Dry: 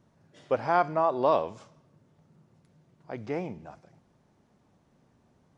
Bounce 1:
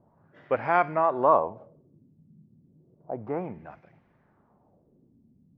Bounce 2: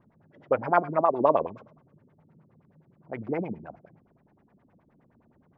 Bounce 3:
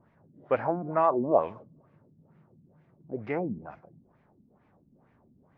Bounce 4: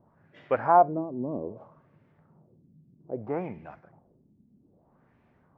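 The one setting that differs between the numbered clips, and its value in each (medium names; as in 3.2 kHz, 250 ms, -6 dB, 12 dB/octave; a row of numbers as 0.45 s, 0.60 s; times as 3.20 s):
LFO low-pass, rate: 0.32 Hz, 9.6 Hz, 2.2 Hz, 0.62 Hz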